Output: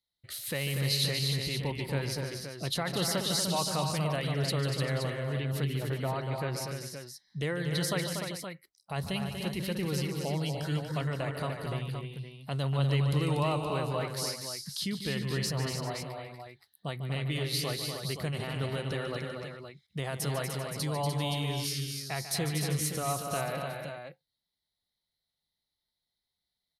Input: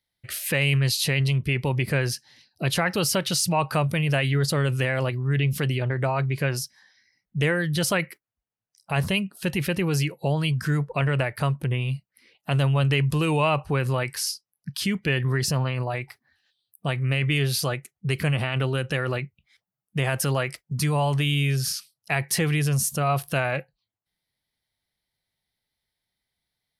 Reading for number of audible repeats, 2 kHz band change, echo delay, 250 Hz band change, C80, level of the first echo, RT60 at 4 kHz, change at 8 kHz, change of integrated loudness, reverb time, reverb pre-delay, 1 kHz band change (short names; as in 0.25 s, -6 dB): 5, -11.0 dB, 0.146 s, -7.0 dB, none, -11.0 dB, none, -6.0 dB, -7.5 dB, none, none, -6.5 dB